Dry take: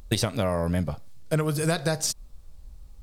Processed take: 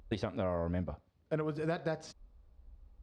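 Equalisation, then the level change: HPF 42 Hz; tape spacing loss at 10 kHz 33 dB; bell 130 Hz -11 dB 0.66 oct; -5.5 dB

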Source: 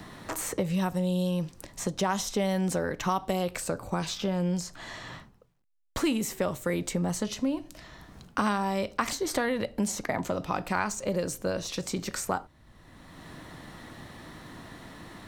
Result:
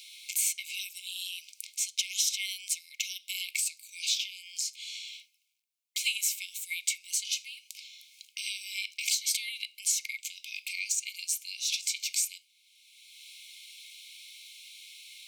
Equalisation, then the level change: brick-wall FIR high-pass 2100 Hz; +7.0 dB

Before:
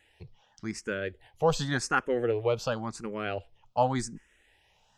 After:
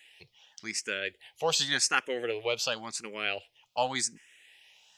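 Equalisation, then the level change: HPF 640 Hz 6 dB/oct; resonant high shelf 1800 Hz +8.5 dB, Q 1.5; 0.0 dB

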